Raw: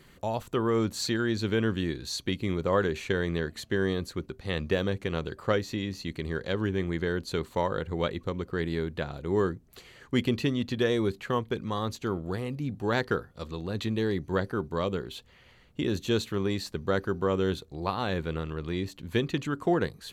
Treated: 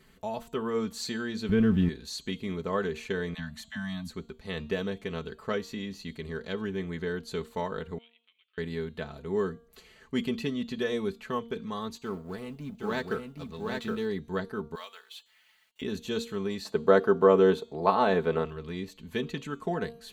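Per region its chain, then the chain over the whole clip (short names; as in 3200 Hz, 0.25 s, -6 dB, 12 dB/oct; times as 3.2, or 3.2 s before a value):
1.49–1.89 zero-crossing step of -38 dBFS + tone controls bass +14 dB, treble -10 dB + notch 4200 Hz, Q 20
3.34–4.11 Chebyshev band-stop 270–610 Hz, order 5 + dispersion lows, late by 50 ms, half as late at 400 Hz
7.98–8.58 Butterworth band-pass 2800 Hz, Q 3 + compressor 2:1, threshold -60 dBFS
11.98–14.06 G.711 law mismatch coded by A + echo 0.768 s -3 dB
14.75–15.82 HPF 870 Hz 24 dB/oct + bell 1100 Hz -5.5 dB 0.7 oct + companded quantiser 6-bit
16.65–18.45 HPF 95 Hz + bell 640 Hz +13.5 dB 2.9 oct
whole clip: comb 4.6 ms, depth 67%; de-hum 232.3 Hz, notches 36; gain -5.5 dB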